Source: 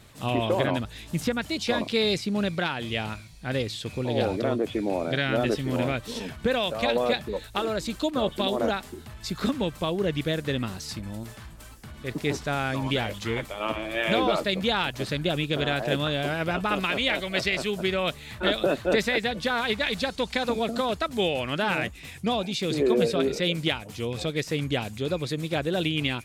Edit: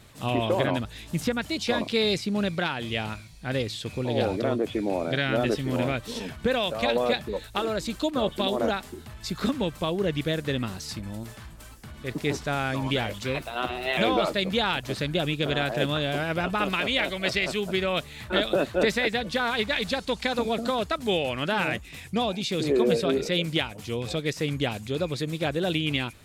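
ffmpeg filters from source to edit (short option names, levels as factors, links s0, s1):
-filter_complex "[0:a]asplit=3[s0][s1][s2];[s0]atrim=end=13.224[s3];[s1]atrim=start=13.22:end=14.08,asetpts=PTS-STARTPTS,asetrate=50274,aresample=44100,atrim=end_sample=33268,asetpts=PTS-STARTPTS[s4];[s2]atrim=start=14.076[s5];[s3][s4]acrossfade=d=0.004:c1=hsin:c2=hsin[s6];[s6][s5]acrossfade=d=0.004:c1=hsin:c2=hsin"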